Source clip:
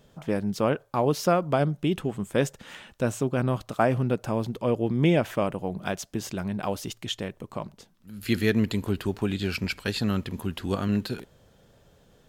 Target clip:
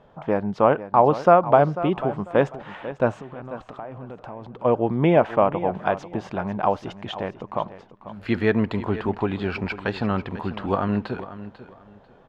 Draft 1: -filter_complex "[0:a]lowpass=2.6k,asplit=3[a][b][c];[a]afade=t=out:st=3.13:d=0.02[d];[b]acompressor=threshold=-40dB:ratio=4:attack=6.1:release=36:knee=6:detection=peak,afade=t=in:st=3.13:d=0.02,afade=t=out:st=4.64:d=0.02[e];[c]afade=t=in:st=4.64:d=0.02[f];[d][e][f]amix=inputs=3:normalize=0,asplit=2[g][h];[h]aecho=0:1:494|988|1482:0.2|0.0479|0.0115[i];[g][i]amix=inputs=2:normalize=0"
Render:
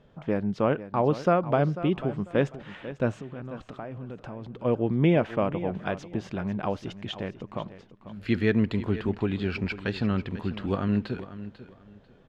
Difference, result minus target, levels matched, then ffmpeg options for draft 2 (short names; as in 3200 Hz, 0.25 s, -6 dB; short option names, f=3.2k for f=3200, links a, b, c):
1000 Hz band -5.5 dB
-filter_complex "[0:a]lowpass=2.6k,equalizer=f=860:w=0.92:g=12.5,asplit=3[a][b][c];[a]afade=t=out:st=3.13:d=0.02[d];[b]acompressor=threshold=-40dB:ratio=4:attack=6.1:release=36:knee=6:detection=peak,afade=t=in:st=3.13:d=0.02,afade=t=out:st=4.64:d=0.02[e];[c]afade=t=in:st=4.64:d=0.02[f];[d][e][f]amix=inputs=3:normalize=0,asplit=2[g][h];[h]aecho=0:1:494|988|1482:0.2|0.0479|0.0115[i];[g][i]amix=inputs=2:normalize=0"